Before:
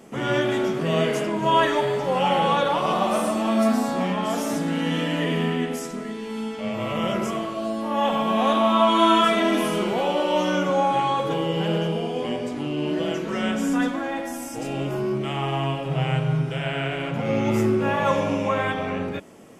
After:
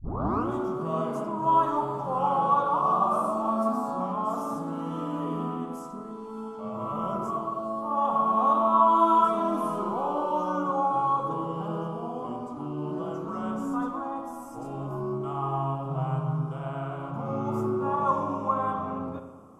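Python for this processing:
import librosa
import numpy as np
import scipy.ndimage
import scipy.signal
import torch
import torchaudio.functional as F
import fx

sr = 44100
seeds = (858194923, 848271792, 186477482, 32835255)

y = fx.tape_start_head(x, sr, length_s=0.5)
y = fx.curve_eq(y, sr, hz=(290.0, 520.0, 1200.0, 1800.0, 9500.0), db=(0, -4, 10, -21, -7))
y = fx.rev_spring(y, sr, rt60_s=1.2, pass_ms=(34, 51), chirp_ms=30, drr_db=7.0)
y = y * 10.0 ** (-7.0 / 20.0)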